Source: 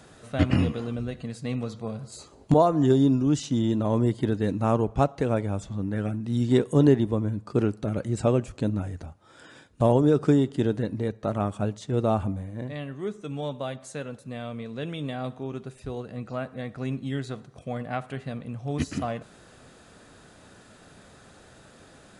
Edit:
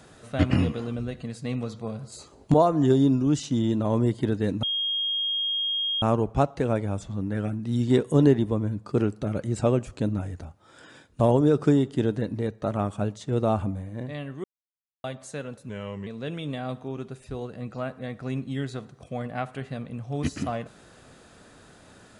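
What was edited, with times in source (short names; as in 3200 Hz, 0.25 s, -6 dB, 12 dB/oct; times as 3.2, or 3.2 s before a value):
4.63 add tone 3250 Hz -24 dBFS 1.39 s
13.05–13.65 mute
14.3–14.62 speed 85%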